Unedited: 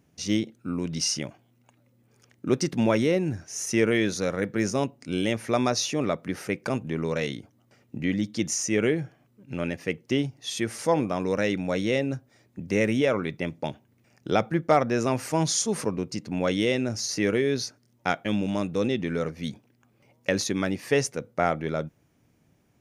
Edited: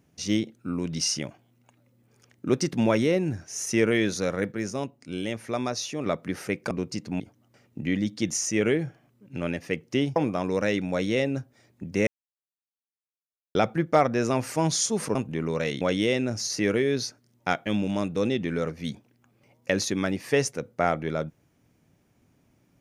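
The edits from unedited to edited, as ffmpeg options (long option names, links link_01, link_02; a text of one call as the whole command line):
ffmpeg -i in.wav -filter_complex "[0:a]asplit=10[link_01][link_02][link_03][link_04][link_05][link_06][link_07][link_08][link_09][link_10];[link_01]atrim=end=4.522[link_11];[link_02]atrim=start=4.518:end=6.062,asetpts=PTS-STARTPTS,volume=-5dB[link_12];[link_03]atrim=start=6.058:end=6.712[link_13];[link_04]atrim=start=15.908:end=16.402[link_14];[link_05]atrim=start=7.368:end=10.332[link_15];[link_06]atrim=start=10.918:end=12.83,asetpts=PTS-STARTPTS,afade=type=out:start_time=1.908:duration=0.004:curve=hsin[link_16];[link_07]atrim=start=12.83:end=14.31,asetpts=PTS-STARTPTS,volume=0[link_17];[link_08]atrim=start=14.31:end=15.912,asetpts=PTS-STARTPTS,afade=type=in:duration=0.004:curve=hsin[link_18];[link_09]atrim=start=6.708:end=7.372[link_19];[link_10]atrim=start=16.398[link_20];[link_11][link_12]acrossfade=duration=0.004:curve1=hsin:curve2=hsin[link_21];[link_21][link_13]acrossfade=duration=0.004:curve1=hsin:curve2=hsin[link_22];[link_22][link_14]acrossfade=duration=0.004:curve1=hsin:curve2=hsin[link_23];[link_23][link_15]acrossfade=duration=0.004:curve1=hsin:curve2=hsin[link_24];[link_16][link_17][link_18]concat=n=3:v=0:a=1[link_25];[link_24][link_25]acrossfade=duration=0.004:curve1=hsin:curve2=hsin[link_26];[link_26][link_19]acrossfade=duration=0.004:curve1=hsin:curve2=hsin[link_27];[link_27][link_20]acrossfade=duration=0.004:curve1=hsin:curve2=hsin" out.wav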